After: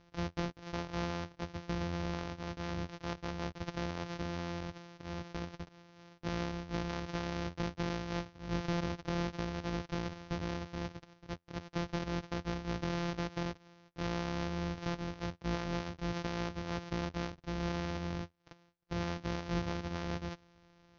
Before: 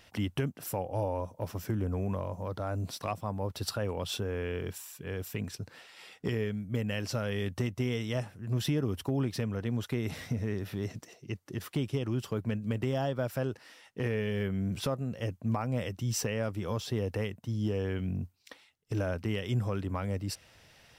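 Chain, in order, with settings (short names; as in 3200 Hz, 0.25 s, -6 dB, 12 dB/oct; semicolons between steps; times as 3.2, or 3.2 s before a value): sample sorter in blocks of 256 samples; steep low-pass 6200 Hz 72 dB/oct; gain -5 dB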